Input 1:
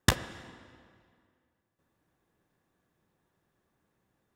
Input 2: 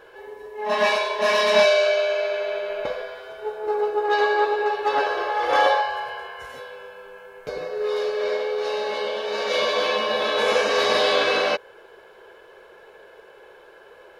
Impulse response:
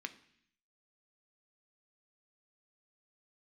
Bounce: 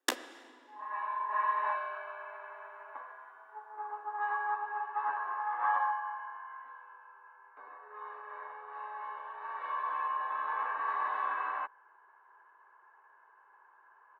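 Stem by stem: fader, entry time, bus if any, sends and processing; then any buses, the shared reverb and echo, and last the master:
-5.0 dB, 0.00 s, no send, none
0.83 s -23 dB -> 1.18 s -12.5 dB, 0.10 s, no send, low-pass 1.6 kHz 24 dB/octave; resonant low shelf 750 Hz -11 dB, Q 3; comb 1.1 ms, depth 37%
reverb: none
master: steep high-pass 250 Hz 96 dB/octave

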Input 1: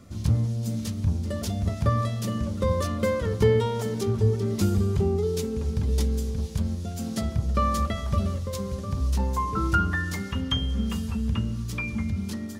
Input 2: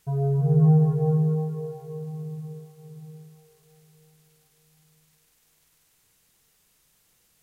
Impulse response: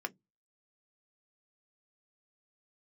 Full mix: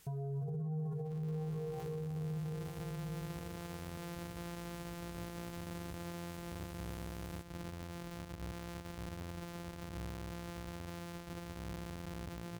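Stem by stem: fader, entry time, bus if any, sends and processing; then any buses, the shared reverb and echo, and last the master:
-13.0 dB, 0.95 s, no send, sorted samples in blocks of 256 samples; compression, threshold -26 dBFS, peak gain reduction 11 dB; peak limiter -24.5 dBFS, peak gain reduction 10 dB
+2.5 dB, 0.00 s, no send, compression, threshold -27 dBFS, peak gain reduction 12.5 dB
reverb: none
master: peak limiter -34.5 dBFS, peak gain reduction 15.5 dB

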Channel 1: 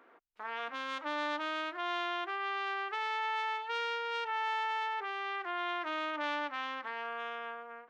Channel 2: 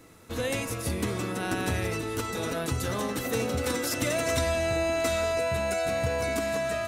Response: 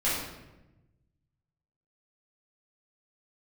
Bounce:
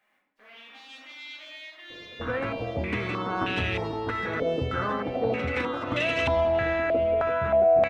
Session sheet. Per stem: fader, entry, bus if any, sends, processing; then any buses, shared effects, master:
-8.0 dB, 0.00 s, send -3 dB, spectral gate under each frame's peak -10 dB weak; companded quantiser 8-bit
-1.0 dB, 1.90 s, no send, step-sequenced low-pass 3.2 Hz 550–2900 Hz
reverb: on, RT60 1.0 s, pre-delay 6 ms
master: none

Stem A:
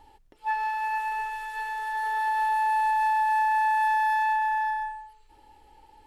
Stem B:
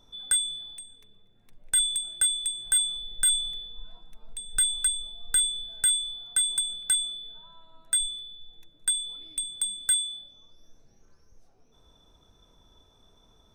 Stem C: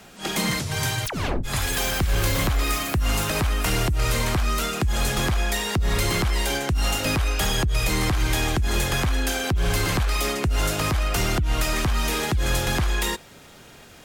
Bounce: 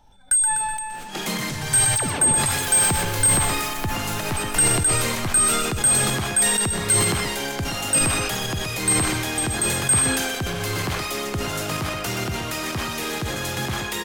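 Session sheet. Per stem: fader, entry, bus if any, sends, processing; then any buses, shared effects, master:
-7.0 dB, 0.00 s, no send, no echo send, reverb removal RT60 0.9 s; compression 1.5:1, threshold -37 dBFS, peak gain reduction 5 dB
-1.0 dB, 0.00 s, no send, echo send -12.5 dB, comb 1.3 ms, depth 100%
-2.5 dB, 0.90 s, no send, echo send -8.5 dB, high-pass 93 Hz 24 dB/octave; volume shaper 127 bpm, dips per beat 1, -10 dB, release 74 ms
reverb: none
echo: feedback delay 125 ms, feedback 33%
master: decay stretcher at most 27 dB/s

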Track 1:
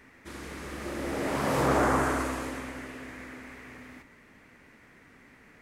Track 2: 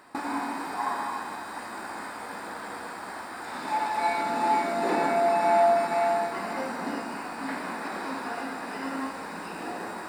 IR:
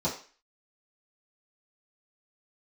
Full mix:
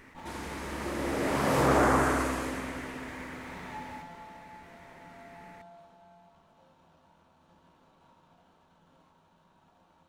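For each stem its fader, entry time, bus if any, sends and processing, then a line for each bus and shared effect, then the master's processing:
+1.0 dB, 0.00 s, no send, none
3.74 s -5 dB -> 4.47 s -15.5 dB -> 5.42 s -15.5 dB -> 6.17 s -22.5 dB, 0.00 s, send -5.5 dB, amplifier tone stack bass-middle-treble 10-0-10; peak limiter -34 dBFS, peak gain reduction 10.5 dB; sliding maximum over 17 samples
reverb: on, RT60 0.40 s, pre-delay 3 ms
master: attacks held to a fixed rise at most 220 dB/s

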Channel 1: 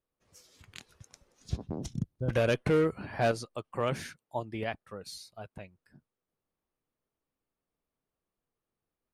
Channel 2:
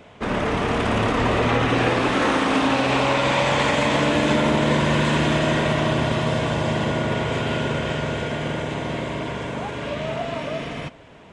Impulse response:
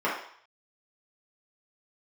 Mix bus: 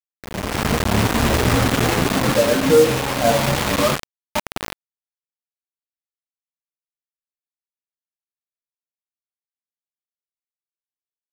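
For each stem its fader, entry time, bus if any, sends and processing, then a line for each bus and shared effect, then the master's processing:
-3.0 dB, 0.00 s, send -9.5 dB, expander on every frequency bin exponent 2
3.82 s -10 dB -> 4.06 s -22.5 dB, 0.00 s, no send, spectral gate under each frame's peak -25 dB strong; tone controls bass +8 dB, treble +11 dB; three-phase chorus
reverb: on, RT60 0.60 s, pre-delay 3 ms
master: treble shelf 2.3 kHz -11 dB; bit crusher 5-bit; level rider gain up to 12 dB

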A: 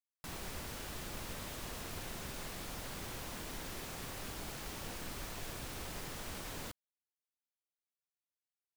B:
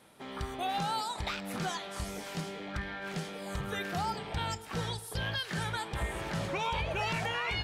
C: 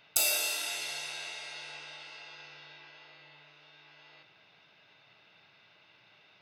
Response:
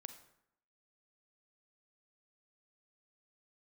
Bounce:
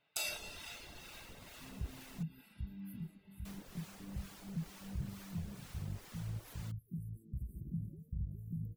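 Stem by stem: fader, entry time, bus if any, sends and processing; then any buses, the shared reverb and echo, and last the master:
-7.0 dB, 0.00 s, muted 2.23–3.45 s, no send, none
-2.5 dB, 1.40 s, no send, inverse Chebyshev band-stop 890–4800 Hz, stop band 70 dB; tone controls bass +5 dB, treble +1 dB; peak limiter -28.5 dBFS, peak gain reduction 7 dB
-5.0 dB, 0.00 s, no send, treble shelf 8.3 kHz -12 dB; upward expansion 1.5:1, over -43 dBFS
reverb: none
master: reverb removal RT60 0.59 s; harmonic tremolo 2.2 Hz, depth 50%, crossover 720 Hz

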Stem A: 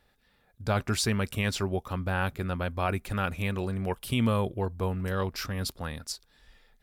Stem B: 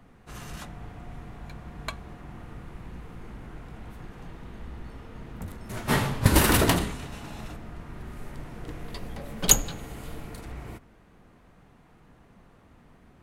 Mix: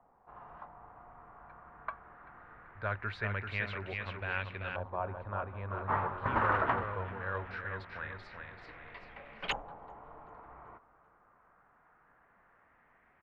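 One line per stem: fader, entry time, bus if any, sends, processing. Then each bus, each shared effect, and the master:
-4.5 dB, 2.15 s, no send, echo send -5 dB, graphic EQ with 31 bands 100 Hz +11 dB, 800 Hz -10 dB, 1.25 kHz -6 dB, 2 kHz -3 dB, 4 kHz +9 dB
-6.5 dB, 0.00 s, no send, echo send -19 dB, none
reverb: none
echo: feedback delay 387 ms, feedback 39%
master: three-band isolator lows -15 dB, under 540 Hz, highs -15 dB, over 3.1 kHz; LFO low-pass saw up 0.21 Hz 870–2600 Hz

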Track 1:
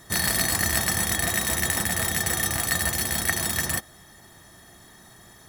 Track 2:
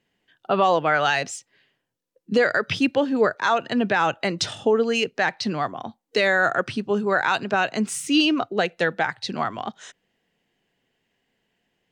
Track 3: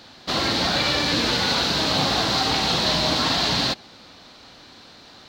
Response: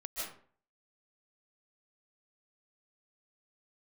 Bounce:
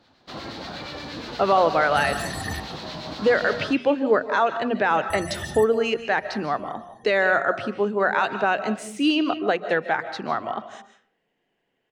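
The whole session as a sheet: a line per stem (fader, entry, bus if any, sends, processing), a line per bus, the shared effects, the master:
-2.0 dB, 1.85 s, muted 2.60–5.10 s, send -16.5 dB, loudest bins only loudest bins 32
0.0 dB, 0.90 s, send -9 dB, tone controls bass -7 dB, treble -3 dB
-8.0 dB, 0.00 s, no send, harmonic tremolo 8.4 Hz, depth 50%, crossover 1.3 kHz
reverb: on, RT60 0.50 s, pre-delay 110 ms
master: treble shelf 2.6 kHz -9.5 dB; hum notches 60/120/180/240 Hz

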